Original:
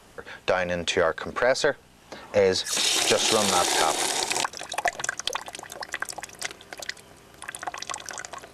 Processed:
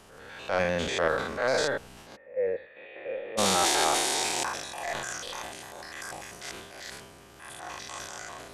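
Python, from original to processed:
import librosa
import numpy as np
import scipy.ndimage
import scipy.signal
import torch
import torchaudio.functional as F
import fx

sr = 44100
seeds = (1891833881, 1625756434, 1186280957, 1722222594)

y = fx.spec_steps(x, sr, hold_ms=100)
y = fx.transient(y, sr, attack_db=-7, sustain_db=7)
y = fx.formant_cascade(y, sr, vowel='e', at=(2.15, 3.37), fade=0.02)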